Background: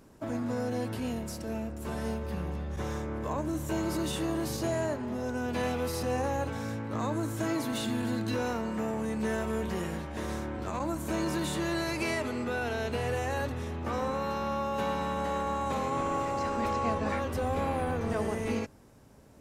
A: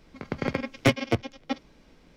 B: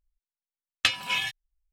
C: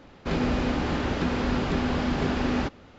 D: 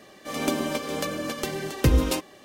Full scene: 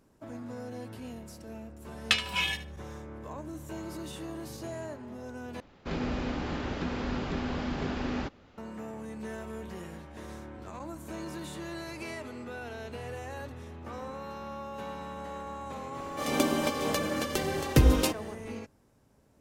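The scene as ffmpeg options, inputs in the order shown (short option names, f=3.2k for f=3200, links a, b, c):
-filter_complex "[0:a]volume=-8.5dB[a];[2:a]aecho=1:1:75|150|225:0.211|0.0465|0.0102[b];[a]asplit=2[c][d];[c]atrim=end=5.604[e];[3:a]atrim=end=2.98,asetpts=PTS-STARTPTS,volume=-7dB[f];[d]atrim=start=8.576[g];[b]atrim=end=1.72,asetpts=PTS-STARTPTS,volume=-2dB,afade=t=in:d=0.004:c=hsin,afade=t=out:st=1.716:d=0.004:c=hsin,adelay=1260[h];[4:a]atrim=end=2.44,asetpts=PTS-STARTPTS,volume=-1dB,afade=t=in:d=0.05,afade=t=out:st=2.39:d=0.05,adelay=15920[i];[e][f]acrossfade=d=0.004:c1=hsin:c2=hsin[j];[j][g]acrossfade=d=0.004:c1=hsin:c2=hsin[k];[k][h][i]amix=inputs=3:normalize=0"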